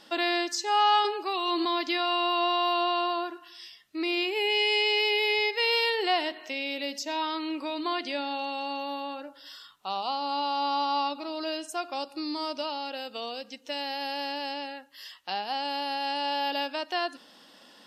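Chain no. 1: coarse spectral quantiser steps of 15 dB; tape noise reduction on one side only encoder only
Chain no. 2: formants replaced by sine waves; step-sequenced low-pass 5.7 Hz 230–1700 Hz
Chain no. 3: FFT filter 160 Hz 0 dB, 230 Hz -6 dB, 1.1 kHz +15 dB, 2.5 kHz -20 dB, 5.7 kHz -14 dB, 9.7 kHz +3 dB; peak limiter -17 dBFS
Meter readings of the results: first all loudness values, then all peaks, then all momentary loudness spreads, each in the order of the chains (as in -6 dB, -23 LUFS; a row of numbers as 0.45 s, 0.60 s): -28.5 LUFS, -27.0 LUFS, -25.5 LUFS; -13.5 dBFS, -7.0 dBFS, -17.0 dBFS; 15 LU, 12 LU, 9 LU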